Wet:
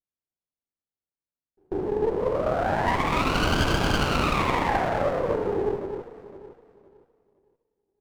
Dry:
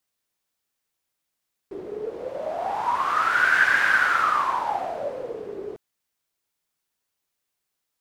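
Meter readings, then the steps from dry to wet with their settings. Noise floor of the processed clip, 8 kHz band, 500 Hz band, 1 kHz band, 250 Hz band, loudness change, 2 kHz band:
under -85 dBFS, +3.5 dB, +6.5 dB, -2.5 dB, +14.0 dB, -3.0 dB, -9.0 dB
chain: tilt shelf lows +8 dB, about 650 Hz; on a send: reverse echo 139 ms -15.5 dB; on the sum: gate with hold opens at -33 dBFS; echo whose repeats swap between lows and highs 256 ms, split 1.3 kHz, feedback 52%, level -5.5 dB; sliding maximum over 17 samples; trim +4.5 dB

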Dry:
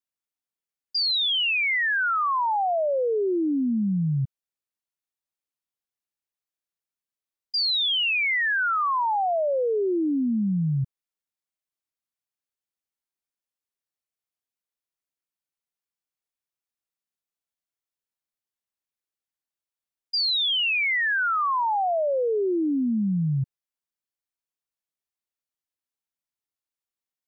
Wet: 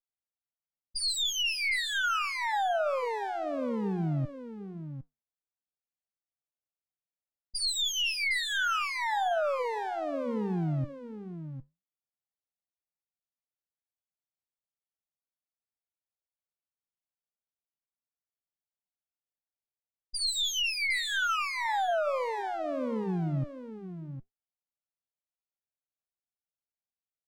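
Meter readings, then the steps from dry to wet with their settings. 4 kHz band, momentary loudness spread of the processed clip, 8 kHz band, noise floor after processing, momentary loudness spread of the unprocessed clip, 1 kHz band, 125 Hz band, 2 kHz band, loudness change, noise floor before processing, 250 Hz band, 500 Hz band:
-6.0 dB, 15 LU, no reading, under -85 dBFS, 6 LU, -6.0 dB, -6.0 dB, -6.5 dB, -6.5 dB, under -85 dBFS, -9.5 dB, -6.5 dB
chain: comb filter that takes the minimum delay 1.4 ms; flange 1.7 Hz, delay 5.7 ms, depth 5.2 ms, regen -76%; level-controlled noise filter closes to 870 Hz, open at -29.5 dBFS; delay 758 ms -10.5 dB

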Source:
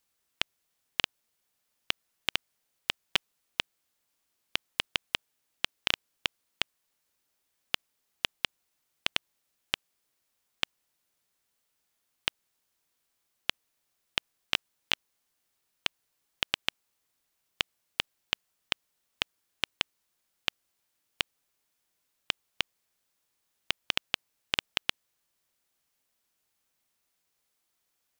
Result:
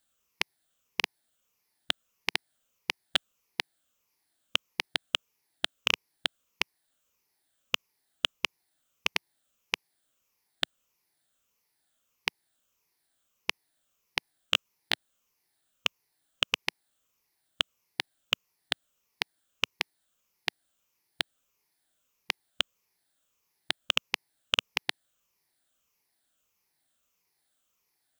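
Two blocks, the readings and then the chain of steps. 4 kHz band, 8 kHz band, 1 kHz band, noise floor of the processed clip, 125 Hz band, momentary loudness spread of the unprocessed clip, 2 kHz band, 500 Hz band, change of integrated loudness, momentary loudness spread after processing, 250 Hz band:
+1.0 dB, +1.5 dB, +1.5 dB, -78 dBFS, +1.0 dB, 5 LU, +1.5 dB, +1.0 dB, +1.0 dB, 8 LU, +1.0 dB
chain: drifting ripple filter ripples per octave 0.81, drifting -1.6 Hz, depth 10 dB

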